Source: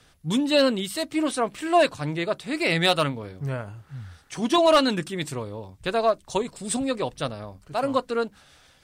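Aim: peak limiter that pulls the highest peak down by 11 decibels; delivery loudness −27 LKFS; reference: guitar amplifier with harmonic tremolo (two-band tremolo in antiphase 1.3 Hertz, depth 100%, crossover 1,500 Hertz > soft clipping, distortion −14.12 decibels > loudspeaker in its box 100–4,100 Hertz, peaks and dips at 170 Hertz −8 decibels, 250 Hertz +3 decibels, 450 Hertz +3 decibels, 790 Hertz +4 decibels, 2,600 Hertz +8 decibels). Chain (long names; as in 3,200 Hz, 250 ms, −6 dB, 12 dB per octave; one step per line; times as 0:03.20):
brickwall limiter −21.5 dBFS
two-band tremolo in antiphase 1.3 Hz, depth 100%, crossover 1,500 Hz
soft clipping −28.5 dBFS
loudspeaker in its box 100–4,100 Hz, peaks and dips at 170 Hz −8 dB, 250 Hz +3 dB, 450 Hz +3 dB, 790 Hz +4 dB, 2,600 Hz +8 dB
level +10 dB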